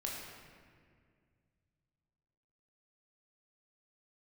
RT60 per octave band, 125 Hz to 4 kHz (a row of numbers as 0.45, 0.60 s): 3.4, 2.7, 2.2, 1.8, 1.9, 1.3 s